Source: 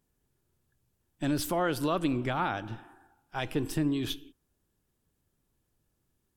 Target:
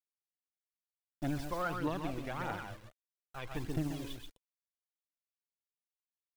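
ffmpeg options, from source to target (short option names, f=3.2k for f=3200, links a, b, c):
-filter_complex "[0:a]aemphasis=mode=reproduction:type=75fm,aeval=exprs='0.15*(cos(1*acos(clip(val(0)/0.15,-1,1)))-cos(1*PI/2))+0.00668*(cos(2*acos(clip(val(0)/0.15,-1,1)))-cos(2*PI/2))+0.0299*(cos(3*acos(clip(val(0)/0.15,-1,1)))-cos(3*PI/2))':c=same,acrusher=bits=7:mix=0:aa=0.000001,asettb=1/sr,asplit=3[a][b][c];[a]atrim=end=1.624[d];[b]atrim=start=1.62:end=3.54,asetpts=PTS-STARTPTS,afade=t=in:d=0.004:c=qsin,afade=t=out:st=1.916:d=0.004:c=qsin,acrossover=split=3800[e][f];[f]acompressor=threshold=-55dB:ratio=4:attack=1:release=60[g];[e][g]amix=inputs=2:normalize=0[h];[c]atrim=start=3.536[i];[d][h]acrossfade=d=0.004:c1=hsin:c2=qsin[j];[j][i]acrossfade=d=0.004:c1=qsin:c2=hsin,flanger=delay=0.7:depth=1.4:regen=59:speed=0.6:shape=triangular,volume=28dB,asoftclip=hard,volume=-28dB,asplit=2[k][l];[l]aecho=0:1:133:0.562[m];[k][m]amix=inputs=2:normalize=0,aphaser=in_gain=1:out_gain=1:delay=2.1:decay=0.46:speed=1.6:type=triangular"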